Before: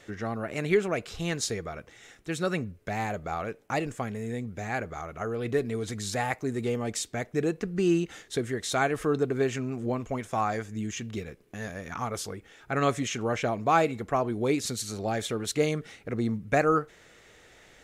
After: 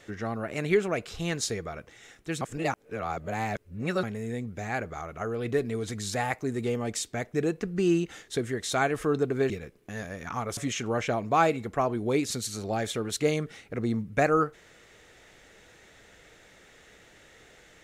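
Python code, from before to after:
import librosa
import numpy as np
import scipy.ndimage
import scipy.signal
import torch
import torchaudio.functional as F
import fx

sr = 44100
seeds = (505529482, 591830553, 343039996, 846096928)

y = fx.edit(x, sr, fx.reverse_span(start_s=2.41, length_s=1.62),
    fx.cut(start_s=9.5, length_s=1.65),
    fx.cut(start_s=12.22, length_s=0.7), tone=tone)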